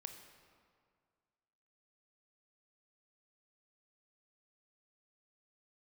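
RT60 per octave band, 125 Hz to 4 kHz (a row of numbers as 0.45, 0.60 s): 2.1, 2.0, 2.0, 2.0, 1.7, 1.3 s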